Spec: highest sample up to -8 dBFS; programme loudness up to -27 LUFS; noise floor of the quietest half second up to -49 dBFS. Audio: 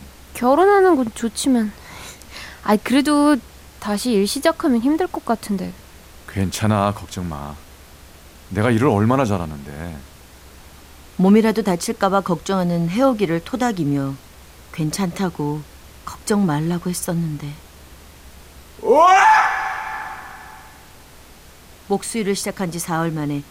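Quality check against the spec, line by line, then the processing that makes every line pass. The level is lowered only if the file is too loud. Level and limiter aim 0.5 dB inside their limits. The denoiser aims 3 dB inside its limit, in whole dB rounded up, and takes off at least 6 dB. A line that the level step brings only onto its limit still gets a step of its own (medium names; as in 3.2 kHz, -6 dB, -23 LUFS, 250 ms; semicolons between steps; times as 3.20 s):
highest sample -4.0 dBFS: fail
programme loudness -19.0 LUFS: fail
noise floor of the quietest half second -44 dBFS: fail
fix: trim -8.5 dB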